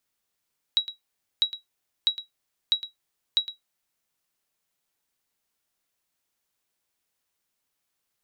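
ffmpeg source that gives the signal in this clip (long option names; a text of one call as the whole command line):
ffmpeg -f lavfi -i "aevalsrc='0.237*(sin(2*PI*3870*mod(t,0.65))*exp(-6.91*mod(t,0.65)/0.14)+0.2*sin(2*PI*3870*max(mod(t,0.65)-0.11,0))*exp(-6.91*max(mod(t,0.65)-0.11,0)/0.14))':duration=3.25:sample_rate=44100" out.wav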